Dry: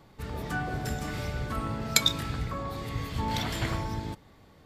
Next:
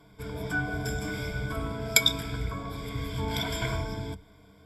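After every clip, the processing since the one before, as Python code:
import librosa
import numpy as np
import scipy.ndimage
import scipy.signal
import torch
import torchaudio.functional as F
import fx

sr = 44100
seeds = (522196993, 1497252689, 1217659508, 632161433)

y = fx.ripple_eq(x, sr, per_octave=1.7, db=17)
y = y * 10.0 ** (-3.0 / 20.0)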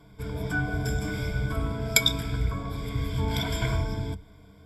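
y = fx.low_shelf(x, sr, hz=180.0, db=7.0)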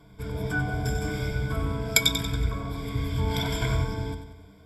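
y = fx.echo_feedback(x, sr, ms=93, feedback_pct=48, wet_db=-9)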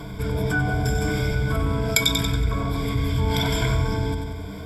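y = fx.env_flatten(x, sr, amount_pct=50)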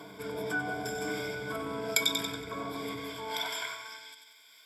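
y = fx.filter_sweep_highpass(x, sr, from_hz=320.0, to_hz=2600.0, start_s=2.93, end_s=4.2, q=0.82)
y = y * 10.0 ** (-7.0 / 20.0)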